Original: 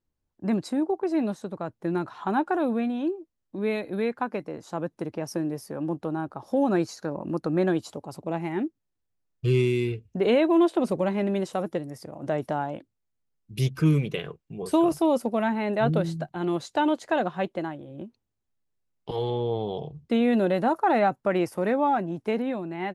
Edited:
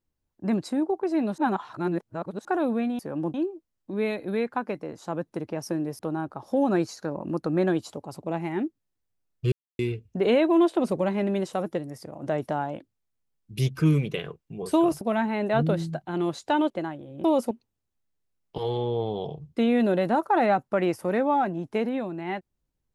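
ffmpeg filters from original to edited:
-filter_complex "[0:a]asplit=12[a][b][c][d][e][f][g][h][i][j][k][l];[a]atrim=end=1.382[m];[b]atrim=start=1.378:end=2.452,asetpts=PTS-STARTPTS,areverse[n];[c]atrim=start=2.448:end=2.992[o];[d]atrim=start=5.638:end=5.992[p];[e]atrim=start=2.988:end=5.642[q];[f]atrim=start=5.988:end=9.52,asetpts=PTS-STARTPTS,afade=t=out:st=3.528:d=0.004:c=hsin[r];[g]atrim=start=9.52:end=9.79,asetpts=PTS-STARTPTS,volume=0[s];[h]atrim=start=9.79:end=15.012,asetpts=PTS-STARTPTS,afade=t=in:d=0.004:c=hsin[t];[i]atrim=start=15.278:end=16.972[u];[j]atrim=start=17.498:end=18.042[v];[k]atrim=start=15.008:end=15.282[w];[l]atrim=start=18.038[x];[m][n]acrossfade=d=0.004:c1=hsin:c2=hsin[y];[y][o]acrossfade=d=0.004:c1=hsin:c2=hsin[z];[z][p]acrossfade=d=0.004:c1=hsin:c2=hsin[aa];[aa][q]acrossfade=d=0.004:c1=hsin:c2=hsin[ab];[r][s][t]concat=n=3:v=0:a=1[ac];[ab][ac]acrossfade=d=0.004:c1=hsin:c2=hsin[ad];[ad][u]acrossfade=d=0.004:c1=hsin:c2=hsin[ae];[ae][v]acrossfade=d=0.004:c1=hsin:c2=hsin[af];[af][w]acrossfade=d=0.004:c1=hsin:c2=hsin[ag];[ag][x]acrossfade=d=0.004:c1=hsin:c2=hsin"

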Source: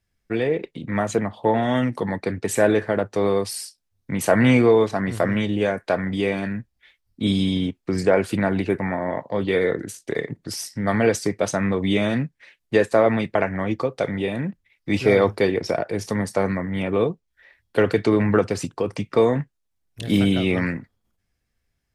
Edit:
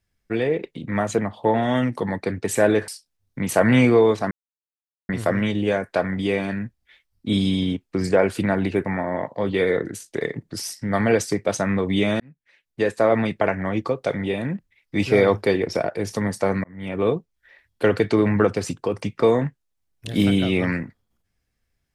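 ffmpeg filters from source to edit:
-filter_complex "[0:a]asplit=5[a][b][c][d][e];[a]atrim=end=2.882[f];[b]atrim=start=3.598:end=5.03,asetpts=PTS-STARTPTS,afade=t=out:st=1.428:d=0.004:c=hsin,apad=pad_dur=0.78[g];[c]atrim=start=5.03:end=12.14,asetpts=PTS-STARTPTS,afade=t=in:d=0.004:c=hsin,afade=t=out:st=7.106:d=0.004:c=hsin[h];[d]atrim=start=12.14:end=16.58,asetpts=PTS-STARTPTS,afade=t=in:d=1,afade=t=out:st=4.436:d=0.004:c=hsin[i];[e]atrim=start=16.58,asetpts=PTS-STARTPTS,afade=t=in:d=0.42[j];[g][h][i][j]concat=n=4:v=0:a=1[k];[f][k]acrossfade=d=0.004:c1=hsin:c2=hsin"

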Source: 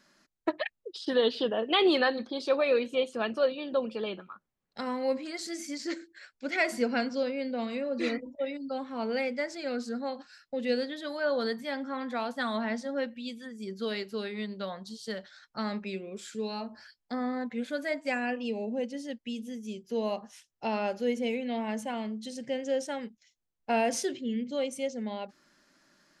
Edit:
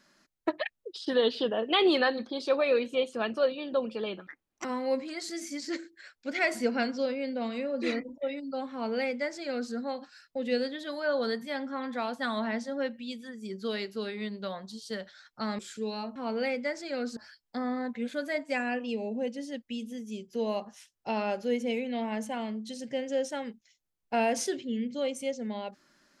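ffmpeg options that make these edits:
-filter_complex "[0:a]asplit=6[a][b][c][d][e][f];[a]atrim=end=4.274[g];[b]atrim=start=4.27:end=4.82,asetpts=PTS-STARTPTS,asetrate=64386,aresample=44100,atrim=end_sample=16613,asetpts=PTS-STARTPTS[h];[c]atrim=start=4.816:end=15.762[i];[d]atrim=start=16.158:end=16.732[j];[e]atrim=start=8.888:end=9.902[k];[f]atrim=start=16.728[l];[g][h]acrossfade=d=0.004:c1=hsin:c2=hsin[m];[m][i]acrossfade=d=0.004:c1=hsin:c2=hsin[n];[n][j]acrossfade=d=0.004:c1=hsin:c2=hsin[o];[o][k]acrossfade=d=0.004:c1=hsin:c2=hsin[p];[p][l]acrossfade=d=0.004:c1=hsin:c2=hsin"

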